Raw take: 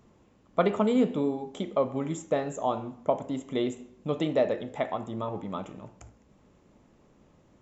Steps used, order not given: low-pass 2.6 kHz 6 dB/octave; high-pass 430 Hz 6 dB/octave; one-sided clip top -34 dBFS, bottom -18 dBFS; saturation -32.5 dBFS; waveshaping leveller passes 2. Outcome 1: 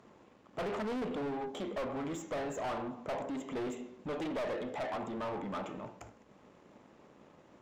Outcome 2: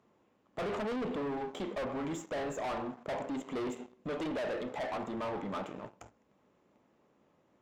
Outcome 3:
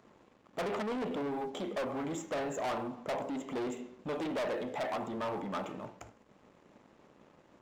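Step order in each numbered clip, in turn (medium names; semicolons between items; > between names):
one-sided clip > high-pass > saturation > waveshaping leveller > low-pass; waveshaping leveller > high-pass > saturation > low-pass > one-sided clip; low-pass > one-sided clip > saturation > high-pass > waveshaping leveller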